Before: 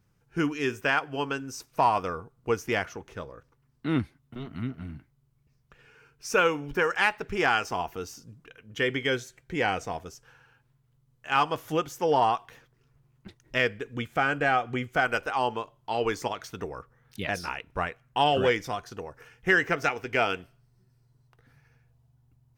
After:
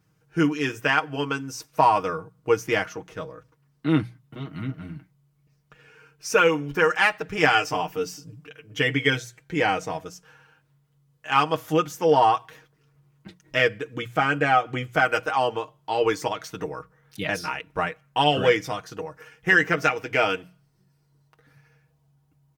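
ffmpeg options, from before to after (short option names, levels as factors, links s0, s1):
-filter_complex "[0:a]asettb=1/sr,asplit=3[s0][s1][s2];[s0]atrim=end=7.374[s3];[s1]atrim=start=7.37:end=9.19,asetpts=PTS-STARTPTS,afade=t=in:d=0.004:c=qsin,afade=t=out:st=1.816:d=0.004:c=qsin,aecho=1:1:6.8:0.65,atrim=end_sample=80262[s4];[s2]atrim=start=9.186[s5];[s3][s4]acrossfade=d=0.004:c1=hsin:c2=qsin[s6];[s6][s5]acrossfade=d=0.004:c1=qsin:c2=hsin,highpass=58,bandreject=f=60:t=h:w=6,bandreject=f=120:t=h:w=6,bandreject=f=180:t=h:w=6,aecho=1:1:6.4:0.65,volume=1.33"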